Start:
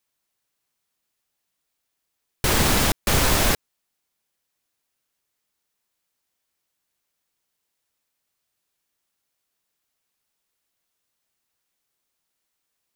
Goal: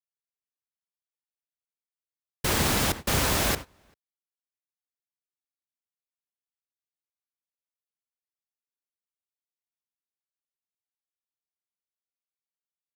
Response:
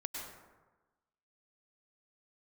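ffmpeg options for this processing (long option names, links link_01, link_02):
-filter_complex "[0:a]highpass=44,asplit=2[link_01][link_02];[link_02]adelay=390.7,volume=-12dB,highshelf=frequency=4000:gain=-8.79[link_03];[link_01][link_03]amix=inputs=2:normalize=0,agate=range=-23dB:threshold=-27dB:ratio=16:detection=peak,volume=-4.5dB"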